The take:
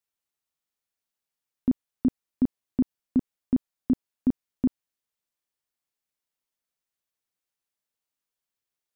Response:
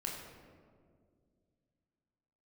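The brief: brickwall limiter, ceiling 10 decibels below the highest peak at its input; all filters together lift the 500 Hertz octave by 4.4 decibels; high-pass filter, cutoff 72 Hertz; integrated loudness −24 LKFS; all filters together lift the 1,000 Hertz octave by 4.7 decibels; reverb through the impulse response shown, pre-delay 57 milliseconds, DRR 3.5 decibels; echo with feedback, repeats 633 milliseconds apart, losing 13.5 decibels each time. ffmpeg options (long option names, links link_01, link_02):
-filter_complex "[0:a]highpass=72,equalizer=frequency=500:width_type=o:gain=5.5,equalizer=frequency=1000:width_type=o:gain=4,alimiter=limit=-23dB:level=0:latency=1,aecho=1:1:633|1266:0.211|0.0444,asplit=2[link_01][link_02];[1:a]atrim=start_sample=2205,adelay=57[link_03];[link_02][link_03]afir=irnorm=-1:irlink=0,volume=-4dB[link_04];[link_01][link_04]amix=inputs=2:normalize=0,volume=11.5dB"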